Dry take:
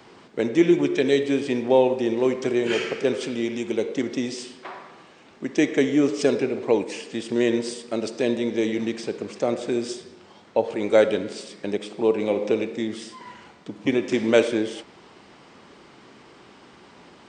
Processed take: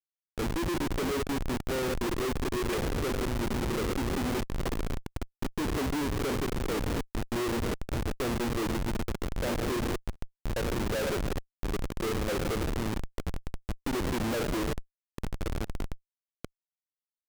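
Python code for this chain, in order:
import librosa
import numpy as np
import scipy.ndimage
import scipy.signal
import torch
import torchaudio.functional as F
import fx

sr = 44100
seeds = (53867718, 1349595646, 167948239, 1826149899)

p1 = fx.high_shelf(x, sr, hz=2300.0, db=-2.5)
p2 = fx.level_steps(p1, sr, step_db=12)
p3 = p2 + fx.echo_diffused(p2, sr, ms=1063, feedback_pct=70, wet_db=-14, dry=0)
p4 = fx.rider(p3, sr, range_db=3, speed_s=2.0)
p5 = fx.schmitt(p4, sr, flips_db=-30.5)
y = fx.buffer_glitch(p5, sr, at_s=(10.12, 15.66), block=512, repeats=2)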